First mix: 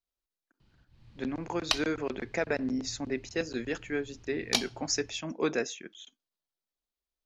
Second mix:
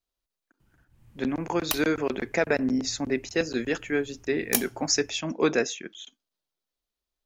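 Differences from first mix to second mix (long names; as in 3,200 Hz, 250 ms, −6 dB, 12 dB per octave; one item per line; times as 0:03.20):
speech +6.0 dB
background: remove low-pass with resonance 4,300 Hz, resonance Q 3.5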